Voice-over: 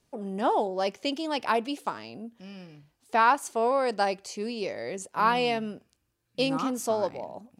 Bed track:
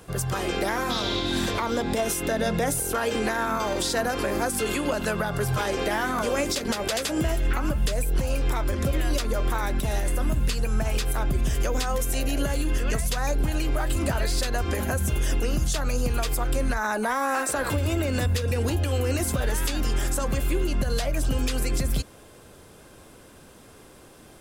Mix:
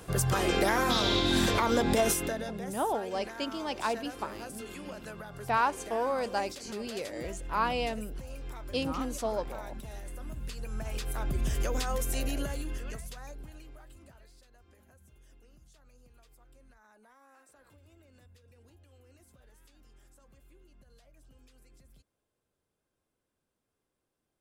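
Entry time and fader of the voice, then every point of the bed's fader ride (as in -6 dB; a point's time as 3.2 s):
2.35 s, -5.5 dB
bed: 2.1 s 0 dB
2.58 s -17 dB
10.23 s -17 dB
11.47 s -5.5 dB
12.24 s -5.5 dB
14.43 s -35 dB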